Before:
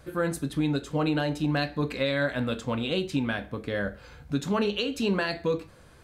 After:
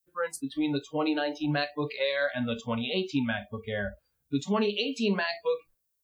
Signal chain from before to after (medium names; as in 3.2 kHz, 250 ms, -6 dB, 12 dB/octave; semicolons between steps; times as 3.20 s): expander -42 dBFS; added noise violet -50 dBFS; spectral noise reduction 29 dB